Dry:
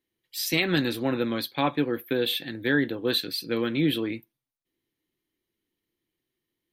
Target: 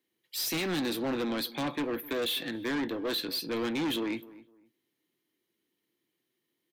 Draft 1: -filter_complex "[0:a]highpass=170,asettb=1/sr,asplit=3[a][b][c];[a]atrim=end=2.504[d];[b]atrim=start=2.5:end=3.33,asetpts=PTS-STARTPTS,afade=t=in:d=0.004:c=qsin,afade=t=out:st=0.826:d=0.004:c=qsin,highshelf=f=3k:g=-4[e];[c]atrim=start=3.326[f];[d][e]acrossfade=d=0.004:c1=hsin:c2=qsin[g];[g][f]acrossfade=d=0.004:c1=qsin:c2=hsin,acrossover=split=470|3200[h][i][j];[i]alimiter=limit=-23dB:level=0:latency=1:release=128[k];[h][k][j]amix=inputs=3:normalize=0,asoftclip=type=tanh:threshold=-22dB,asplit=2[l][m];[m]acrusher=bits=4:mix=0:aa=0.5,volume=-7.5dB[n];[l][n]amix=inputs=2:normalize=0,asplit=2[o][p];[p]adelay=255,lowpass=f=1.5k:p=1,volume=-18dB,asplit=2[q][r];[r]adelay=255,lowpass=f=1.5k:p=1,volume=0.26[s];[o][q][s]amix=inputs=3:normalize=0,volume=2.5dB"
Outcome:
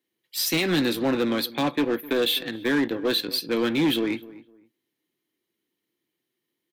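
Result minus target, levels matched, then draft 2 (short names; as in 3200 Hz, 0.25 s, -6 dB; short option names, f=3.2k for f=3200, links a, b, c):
soft clip: distortion -8 dB
-filter_complex "[0:a]highpass=170,asettb=1/sr,asplit=3[a][b][c];[a]atrim=end=2.504[d];[b]atrim=start=2.5:end=3.33,asetpts=PTS-STARTPTS,afade=t=in:d=0.004:c=qsin,afade=t=out:st=0.826:d=0.004:c=qsin,highshelf=f=3k:g=-4[e];[c]atrim=start=3.326[f];[d][e]acrossfade=d=0.004:c1=hsin:c2=qsin[g];[g][f]acrossfade=d=0.004:c1=qsin:c2=hsin,acrossover=split=470|3200[h][i][j];[i]alimiter=limit=-23dB:level=0:latency=1:release=128[k];[h][k][j]amix=inputs=3:normalize=0,asoftclip=type=tanh:threshold=-32dB,asplit=2[l][m];[m]acrusher=bits=4:mix=0:aa=0.5,volume=-7.5dB[n];[l][n]amix=inputs=2:normalize=0,asplit=2[o][p];[p]adelay=255,lowpass=f=1.5k:p=1,volume=-18dB,asplit=2[q][r];[r]adelay=255,lowpass=f=1.5k:p=1,volume=0.26[s];[o][q][s]amix=inputs=3:normalize=0,volume=2.5dB"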